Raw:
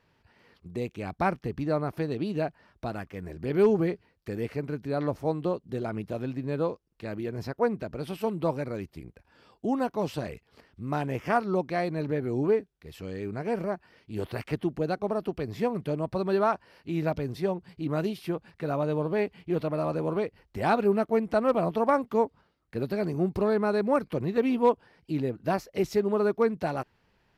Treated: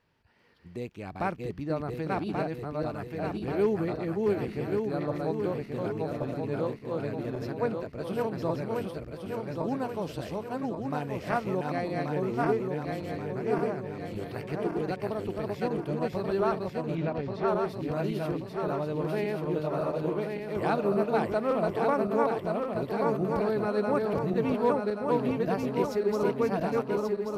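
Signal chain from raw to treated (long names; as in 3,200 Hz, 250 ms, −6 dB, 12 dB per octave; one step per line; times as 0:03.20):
feedback delay that plays each chunk backwards 566 ms, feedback 70%, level −1.5 dB
0:16.95–0:17.48: low-pass filter 4,300 Hz 12 dB per octave
level −4.5 dB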